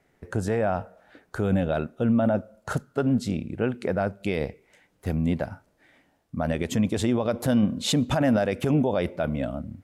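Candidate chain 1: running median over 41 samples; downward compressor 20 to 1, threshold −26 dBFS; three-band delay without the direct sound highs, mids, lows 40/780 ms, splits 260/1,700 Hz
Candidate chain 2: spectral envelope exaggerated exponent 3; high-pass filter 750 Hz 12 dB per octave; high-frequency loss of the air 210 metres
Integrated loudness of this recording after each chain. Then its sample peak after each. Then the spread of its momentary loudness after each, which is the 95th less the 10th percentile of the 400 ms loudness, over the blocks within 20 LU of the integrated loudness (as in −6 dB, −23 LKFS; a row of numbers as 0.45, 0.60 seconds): −35.0, −36.5 LKFS; −18.0, −20.5 dBFS; 7, 13 LU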